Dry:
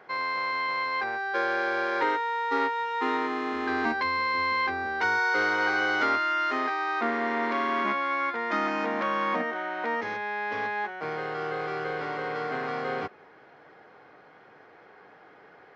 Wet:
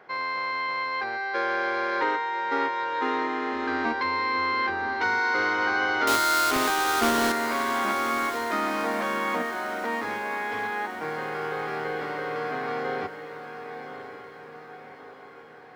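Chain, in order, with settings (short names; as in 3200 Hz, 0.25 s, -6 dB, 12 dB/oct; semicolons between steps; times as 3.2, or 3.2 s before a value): 6.07–7.32 half-waves squared off; diffused feedback echo 1.075 s, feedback 52%, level -9.5 dB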